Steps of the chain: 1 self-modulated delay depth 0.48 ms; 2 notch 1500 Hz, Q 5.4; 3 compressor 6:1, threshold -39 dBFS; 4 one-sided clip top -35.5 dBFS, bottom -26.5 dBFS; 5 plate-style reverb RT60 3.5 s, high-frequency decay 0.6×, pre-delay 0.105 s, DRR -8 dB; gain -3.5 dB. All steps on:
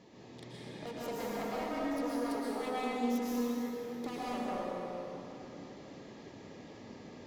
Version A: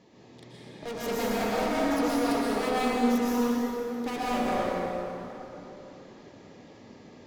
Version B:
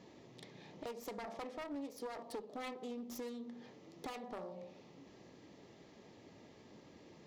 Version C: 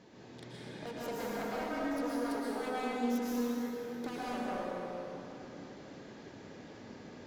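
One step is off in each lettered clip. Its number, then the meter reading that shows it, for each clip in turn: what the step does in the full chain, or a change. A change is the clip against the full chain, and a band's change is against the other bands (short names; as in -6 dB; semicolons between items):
3, mean gain reduction 7.0 dB; 5, momentary loudness spread change -2 LU; 2, 2 kHz band +2.5 dB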